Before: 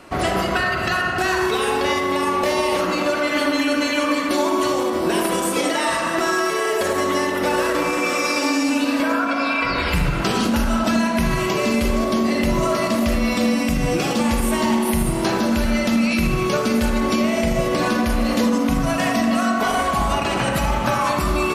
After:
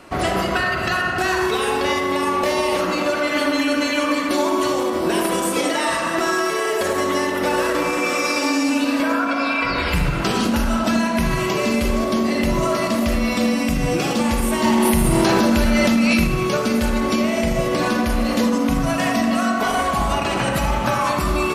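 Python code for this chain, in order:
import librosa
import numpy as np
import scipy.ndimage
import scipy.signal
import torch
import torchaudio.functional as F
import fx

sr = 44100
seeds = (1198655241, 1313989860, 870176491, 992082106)

p1 = x + fx.echo_single(x, sr, ms=94, db=-20.5, dry=0)
y = fx.env_flatten(p1, sr, amount_pct=100, at=(14.64, 16.24))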